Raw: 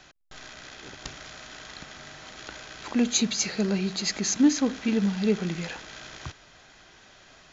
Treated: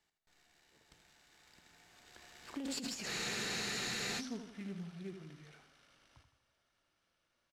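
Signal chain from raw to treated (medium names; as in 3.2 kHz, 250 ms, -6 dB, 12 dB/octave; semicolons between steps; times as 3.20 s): CVSD coder 64 kbps; Doppler pass-by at 3.05 s, 45 m/s, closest 5.1 m; feedback delay 81 ms, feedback 46%, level -8.5 dB; compressor with a negative ratio -38 dBFS, ratio -1; spectral freeze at 3.11 s, 1.08 s; loudspeaker Doppler distortion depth 0.11 ms; trim -2.5 dB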